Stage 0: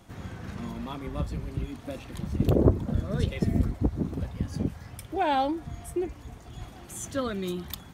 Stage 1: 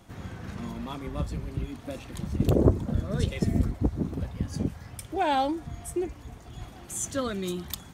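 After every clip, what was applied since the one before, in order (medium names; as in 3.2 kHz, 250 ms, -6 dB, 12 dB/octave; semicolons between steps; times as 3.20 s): dynamic bell 7.5 kHz, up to +7 dB, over -56 dBFS, Q 1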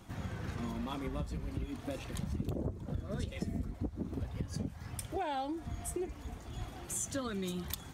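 flange 0.41 Hz, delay 0.7 ms, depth 4 ms, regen -65%; compression 8:1, threshold -37 dBFS, peak gain reduction 18.5 dB; trim +3.5 dB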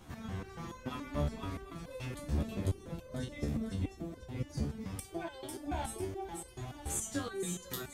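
two-band feedback delay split 470 Hz, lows 187 ms, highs 497 ms, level -3.5 dB; resonator arpeggio 7 Hz 73–510 Hz; trim +10 dB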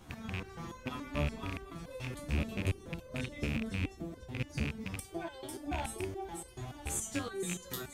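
rattle on loud lows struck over -36 dBFS, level -27 dBFS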